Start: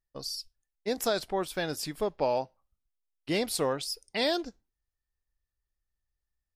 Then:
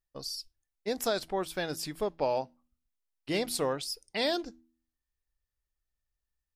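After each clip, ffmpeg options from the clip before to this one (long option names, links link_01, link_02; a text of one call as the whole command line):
ffmpeg -i in.wav -af "bandreject=frequency=81.31:width_type=h:width=4,bandreject=frequency=162.62:width_type=h:width=4,bandreject=frequency=243.93:width_type=h:width=4,bandreject=frequency=325.24:width_type=h:width=4,volume=-1.5dB" out.wav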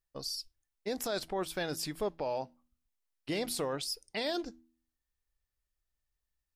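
ffmpeg -i in.wav -af "alimiter=level_in=1.5dB:limit=-24dB:level=0:latency=1:release=18,volume=-1.5dB" out.wav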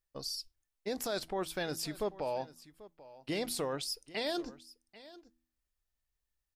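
ffmpeg -i in.wav -af "aecho=1:1:789:0.119,volume=-1dB" out.wav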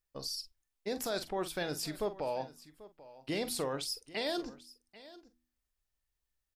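ffmpeg -i in.wav -filter_complex "[0:a]asplit=2[link_01][link_02];[link_02]adelay=45,volume=-12.5dB[link_03];[link_01][link_03]amix=inputs=2:normalize=0" out.wav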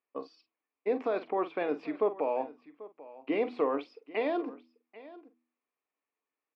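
ffmpeg -i in.wav -af "highpass=frequency=230:width=0.5412,highpass=frequency=230:width=1.3066,equalizer=frequency=280:width_type=q:width=4:gain=9,equalizer=frequency=450:width_type=q:width=4:gain=9,equalizer=frequency=720:width_type=q:width=4:gain=5,equalizer=frequency=1100:width_type=q:width=4:gain=10,equalizer=frequency=1600:width_type=q:width=4:gain=-4,equalizer=frequency=2400:width_type=q:width=4:gain=8,lowpass=frequency=2500:width=0.5412,lowpass=frequency=2500:width=1.3066" out.wav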